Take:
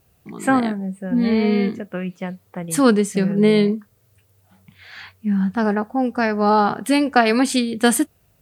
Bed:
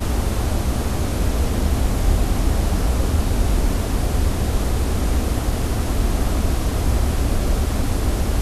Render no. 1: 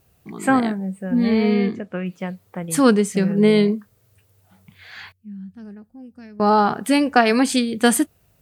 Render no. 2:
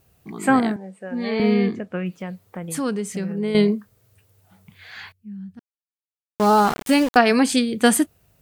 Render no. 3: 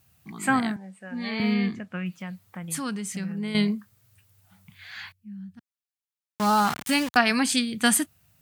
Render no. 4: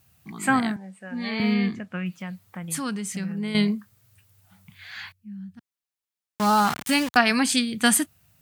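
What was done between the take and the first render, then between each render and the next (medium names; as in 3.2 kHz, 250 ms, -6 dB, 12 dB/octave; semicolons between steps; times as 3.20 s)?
1.53–2.06 s: distance through air 59 m; 5.12–6.40 s: amplifier tone stack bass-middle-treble 10-0-1
0.76–1.40 s: band-pass 380–7200 Hz; 2.16–3.55 s: compression 2:1, threshold -29 dBFS; 5.59–7.17 s: small samples zeroed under -24.5 dBFS
high-pass 83 Hz; peaking EQ 440 Hz -14.5 dB 1.4 oct
trim +1.5 dB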